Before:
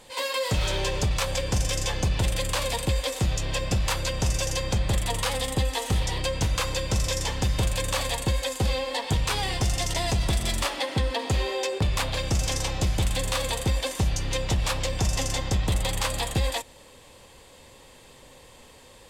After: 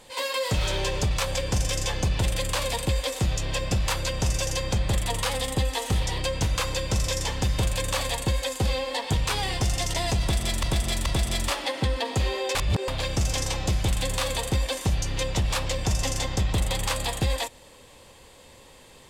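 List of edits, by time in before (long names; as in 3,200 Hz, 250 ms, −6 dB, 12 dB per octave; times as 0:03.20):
0:10.20–0:10.63: repeat, 3 plays
0:11.69–0:12.02: reverse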